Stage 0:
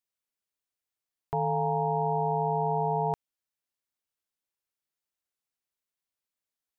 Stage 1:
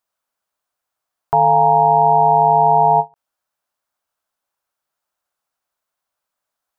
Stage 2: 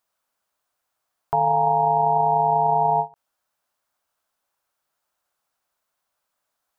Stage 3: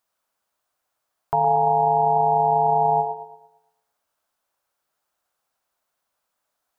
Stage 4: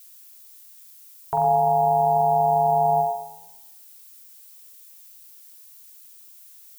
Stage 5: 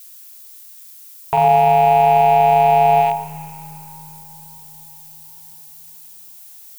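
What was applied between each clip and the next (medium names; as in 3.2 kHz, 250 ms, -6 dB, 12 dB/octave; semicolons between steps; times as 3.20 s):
high-order bell 930 Hz +10 dB; endings held to a fixed fall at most 420 dB/s; trim +7 dB
peak limiter -14.5 dBFS, peak gain reduction 11 dB; trim +2.5 dB
feedback echo behind a band-pass 114 ms, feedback 40%, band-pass 460 Hz, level -4 dB
flutter echo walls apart 7.6 m, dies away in 0.48 s; added noise violet -45 dBFS; trim -3 dB
rattle on loud lows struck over -44 dBFS, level -27 dBFS; reverberation RT60 4.9 s, pre-delay 90 ms, DRR 12 dB; trim +7 dB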